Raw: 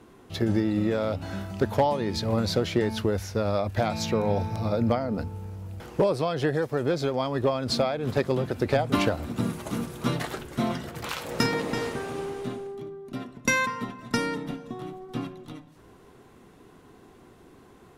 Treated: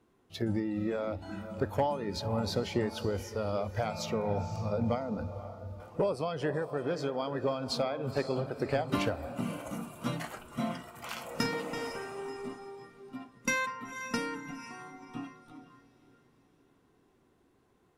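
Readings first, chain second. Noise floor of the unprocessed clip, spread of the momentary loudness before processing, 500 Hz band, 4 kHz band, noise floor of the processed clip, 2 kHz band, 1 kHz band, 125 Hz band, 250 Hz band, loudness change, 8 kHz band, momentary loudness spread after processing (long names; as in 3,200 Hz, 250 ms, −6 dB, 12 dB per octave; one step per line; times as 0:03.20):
−53 dBFS, 12 LU, −6.5 dB, −7.0 dB, −68 dBFS, −6.5 dB, −6.0 dB, −7.5 dB, −7.5 dB, −6.5 dB, −6.5 dB, 13 LU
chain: feedback delay with all-pass diffusion 508 ms, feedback 47%, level −10 dB
noise reduction from a noise print of the clip's start 10 dB
level −6.5 dB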